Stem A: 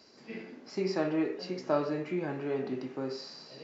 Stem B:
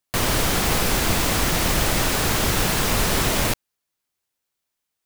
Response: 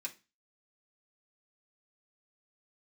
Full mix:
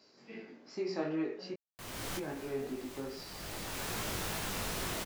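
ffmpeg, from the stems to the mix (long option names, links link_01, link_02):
-filter_complex "[0:a]volume=-2dB,asplit=3[link_01][link_02][link_03];[link_01]atrim=end=1.54,asetpts=PTS-STARTPTS,afade=type=out:start_time=1.536:duration=0.004:curve=hsin[link_04];[link_02]atrim=start=1.54:end=2.17,asetpts=PTS-STARTPTS,volume=0[link_05];[link_03]atrim=start=2.17,asetpts=PTS-STARTPTS,afade=type=in:duration=0.004:curve=hsin[link_06];[link_04][link_05][link_06]concat=n=3:v=0:a=1,asplit=2[link_07][link_08];[1:a]adelay=1650,volume=-12.5dB[link_09];[link_08]apad=whole_len=295603[link_10];[link_09][link_10]sidechaincompress=threshold=-48dB:ratio=10:attack=20:release=592[link_11];[link_07][link_11]amix=inputs=2:normalize=0,lowshelf=frequency=85:gain=-5.5,flanger=delay=18:depth=3.8:speed=2.5"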